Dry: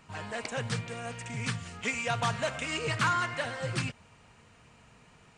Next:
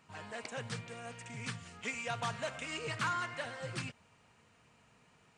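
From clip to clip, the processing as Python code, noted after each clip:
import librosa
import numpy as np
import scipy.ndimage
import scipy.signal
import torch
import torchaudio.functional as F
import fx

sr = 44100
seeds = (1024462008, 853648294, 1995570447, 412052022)

y = fx.highpass(x, sr, hz=110.0, slope=6)
y = F.gain(torch.from_numpy(y), -7.0).numpy()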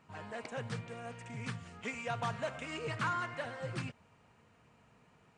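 y = fx.high_shelf(x, sr, hz=2200.0, db=-9.5)
y = F.gain(torch.from_numpy(y), 2.5).numpy()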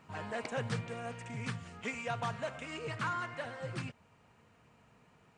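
y = fx.rider(x, sr, range_db=10, speed_s=2.0)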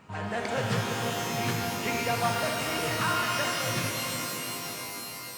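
y = fx.rev_shimmer(x, sr, seeds[0], rt60_s=3.9, semitones=12, shimmer_db=-2, drr_db=0.5)
y = F.gain(torch.from_numpy(y), 5.5).numpy()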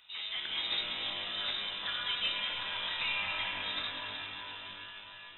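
y = fx.freq_invert(x, sr, carrier_hz=3800)
y = F.gain(torch.from_numpy(y), -6.5).numpy()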